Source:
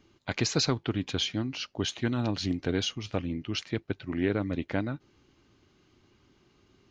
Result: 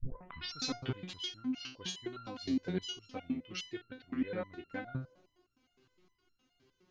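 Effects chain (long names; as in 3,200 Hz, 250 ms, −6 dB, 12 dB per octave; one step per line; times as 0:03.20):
turntable start at the beginning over 0.60 s
delay with a band-pass on its return 73 ms, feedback 74%, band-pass 520 Hz, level −19 dB
rectangular room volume 2,300 cubic metres, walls furnished, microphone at 0.31 metres
step-sequenced resonator 9.7 Hz 130–1,400 Hz
level +5.5 dB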